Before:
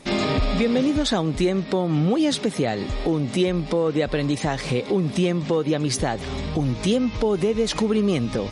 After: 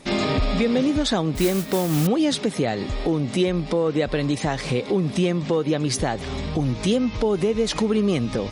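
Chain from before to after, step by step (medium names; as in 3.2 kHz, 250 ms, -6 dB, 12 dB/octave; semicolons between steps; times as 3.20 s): 1.35–2.07 s: modulation noise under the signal 12 dB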